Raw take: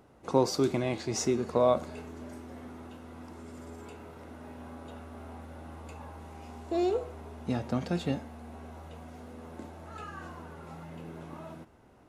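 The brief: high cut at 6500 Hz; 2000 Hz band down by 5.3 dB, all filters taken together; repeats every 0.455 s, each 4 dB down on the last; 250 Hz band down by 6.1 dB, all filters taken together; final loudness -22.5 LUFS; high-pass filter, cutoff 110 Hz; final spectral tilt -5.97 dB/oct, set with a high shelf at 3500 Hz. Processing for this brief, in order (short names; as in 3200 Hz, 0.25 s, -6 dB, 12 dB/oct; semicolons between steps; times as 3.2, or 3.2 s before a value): HPF 110 Hz; LPF 6500 Hz; bell 250 Hz -8 dB; bell 2000 Hz -4.5 dB; high shelf 3500 Hz -7.5 dB; feedback echo 0.455 s, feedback 63%, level -4 dB; gain +12 dB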